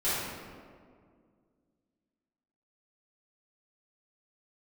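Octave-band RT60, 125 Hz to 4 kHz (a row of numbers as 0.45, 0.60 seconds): 2.4, 2.7, 2.2, 1.8, 1.4, 1.0 seconds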